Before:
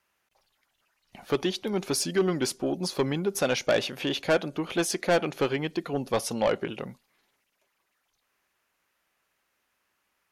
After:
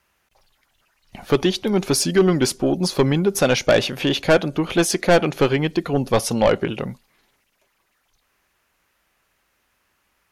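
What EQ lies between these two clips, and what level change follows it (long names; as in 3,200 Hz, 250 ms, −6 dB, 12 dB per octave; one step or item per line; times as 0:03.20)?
low-shelf EQ 110 Hz +12 dB
+7.5 dB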